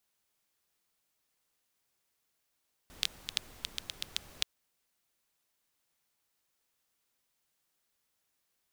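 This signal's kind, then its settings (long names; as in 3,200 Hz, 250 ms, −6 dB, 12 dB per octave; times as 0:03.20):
rain-like ticks over hiss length 1.53 s, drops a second 6.6, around 3,500 Hz, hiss −13 dB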